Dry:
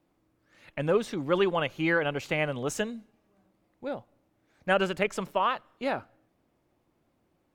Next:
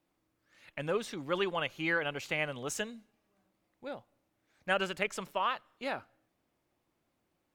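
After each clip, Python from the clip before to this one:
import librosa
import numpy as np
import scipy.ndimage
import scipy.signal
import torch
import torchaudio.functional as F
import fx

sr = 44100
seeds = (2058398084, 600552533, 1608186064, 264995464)

y = fx.tilt_shelf(x, sr, db=-4.0, hz=1100.0)
y = y * librosa.db_to_amplitude(-5.0)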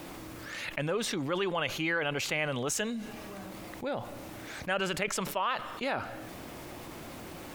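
y = fx.env_flatten(x, sr, amount_pct=70)
y = y * librosa.db_to_amplitude(-2.0)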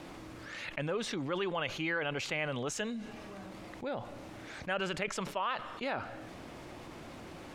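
y = fx.air_absorb(x, sr, metres=55.0)
y = y * librosa.db_to_amplitude(-3.0)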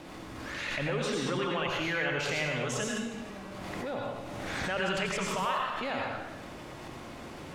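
y = fx.rev_plate(x, sr, seeds[0], rt60_s=0.87, hf_ratio=1.0, predelay_ms=75, drr_db=-1.5)
y = fx.pre_swell(y, sr, db_per_s=22.0)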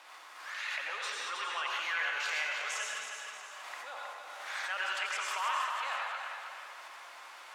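y = fx.ladder_highpass(x, sr, hz=790.0, resonance_pct=25)
y = fx.echo_feedback(y, sr, ms=317, feedback_pct=45, wet_db=-6.5)
y = y * librosa.db_to_amplitude(3.0)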